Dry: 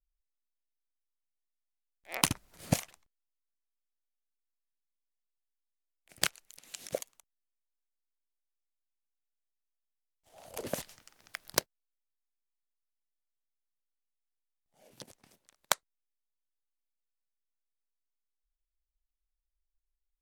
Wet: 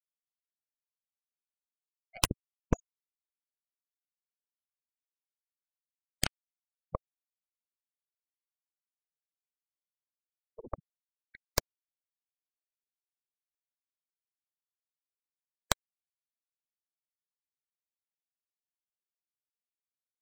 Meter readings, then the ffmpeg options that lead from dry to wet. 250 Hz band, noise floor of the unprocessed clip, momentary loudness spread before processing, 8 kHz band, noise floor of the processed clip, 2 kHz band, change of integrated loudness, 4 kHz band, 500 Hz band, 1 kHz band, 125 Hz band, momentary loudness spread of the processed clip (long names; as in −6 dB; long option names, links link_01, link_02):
−1.0 dB, below −85 dBFS, 22 LU, −3.0 dB, below −85 dBFS, −3.5 dB, −1.5 dB, −2.0 dB, −2.0 dB, −2.0 dB, −0.5 dB, 14 LU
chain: -af "afftfilt=real='re*gte(hypot(re,im),0.0501)':imag='im*gte(hypot(re,im),0.0501)':win_size=1024:overlap=0.75,aeval=exprs='0.596*(cos(1*acos(clip(val(0)/0.596,-1,1)))-cos(1*PI/2))+0.0944*(cos(3*acos(clip(val(0)/0.596,-1,1)))-cos(3*PI/2))+0.0944*(cos(8*acos(clip(val(0)/0.596,-1,1)))-cos(8*PI/2))':channel_layout=same,volume=1dB"